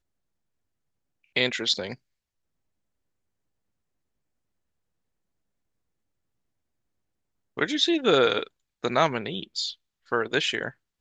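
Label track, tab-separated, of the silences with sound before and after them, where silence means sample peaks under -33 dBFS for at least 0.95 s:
1.940000	7.570000	silence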